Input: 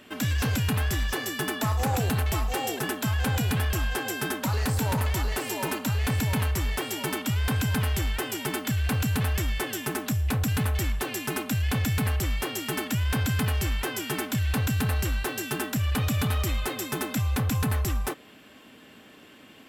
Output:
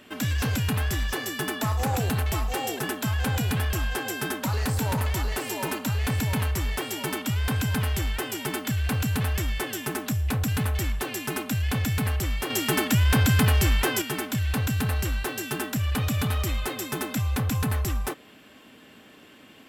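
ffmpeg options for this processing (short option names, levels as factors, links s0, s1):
-filter_complex "[0:a]asettb=1/sr,asplit=3[s0][s1][s2];[s0]atrim=end=12.504[s3];[s1]atrim=start=12.5:end=14.02,asetpts=PTS-STARTPTS,afade=t=in:d=0.004:c=qsin,afade=t=out:st=1.516:d=0.004:c=qsin,acontrast=49[s4];[s2]atrim=start=14.016[s5];[s3][s4]acrossfade=d=0.004:c1=hsin:c2=qsin[s6];[s6][s5]acrossfade=d=0.004:c1=qsin:c2=hsin"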